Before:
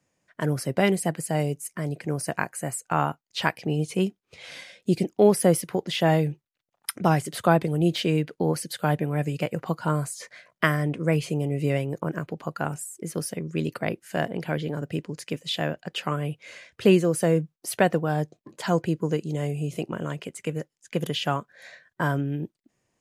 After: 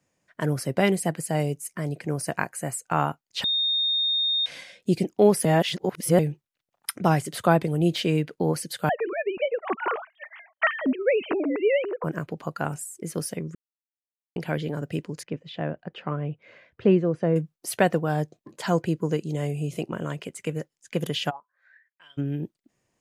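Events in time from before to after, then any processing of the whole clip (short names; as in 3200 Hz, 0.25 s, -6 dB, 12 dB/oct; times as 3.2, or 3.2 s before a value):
3.44–4.46 bleep 3680 Hz -21 dBFS
5.45–6.19 reverse
8.89–12.04 sine-wave speech
13.55–14.36 mute
15.23–17.36 tape spacing loss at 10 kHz 38 dB
21.29–22.17 band-pass 730 Hz -> 3500 Hz, Q 14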